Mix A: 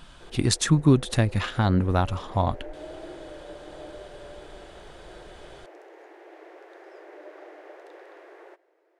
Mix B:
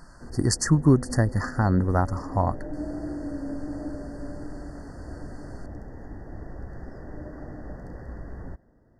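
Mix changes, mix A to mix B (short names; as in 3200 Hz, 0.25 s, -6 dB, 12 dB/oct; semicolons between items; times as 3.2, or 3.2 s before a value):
background: remove brick-wall FIR high-pass 320 Hz; master: add brick-wall FIR band-stop 2000–4300 Hz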